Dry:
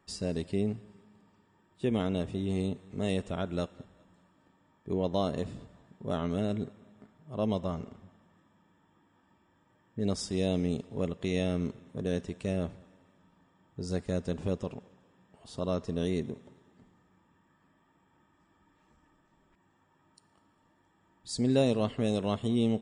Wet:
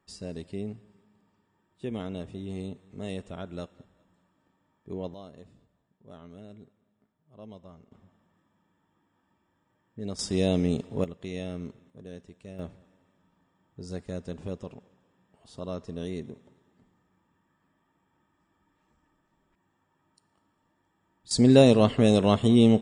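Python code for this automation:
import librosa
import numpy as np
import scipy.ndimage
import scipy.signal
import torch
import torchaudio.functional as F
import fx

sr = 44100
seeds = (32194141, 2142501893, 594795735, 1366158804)

y = fx.gain(x, sr, db=fx.steps((0.0, -5.0), (5.14, -16.0), (7.92, -5.0), (10.19, 4.5), (11.04, -5.5), (11.9, -12.0), (12.59, -4.0), (21.31, 9.0)))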